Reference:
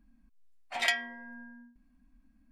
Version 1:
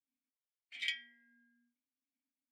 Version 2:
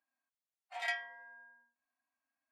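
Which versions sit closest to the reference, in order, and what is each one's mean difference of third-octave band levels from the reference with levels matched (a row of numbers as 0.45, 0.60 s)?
2, 1; 3.5, 6.5 dB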